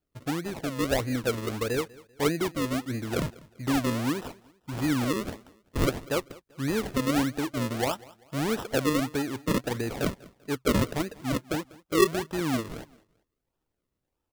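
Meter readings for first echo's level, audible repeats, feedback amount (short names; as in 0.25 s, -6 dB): -22.0 dB, 2, 35%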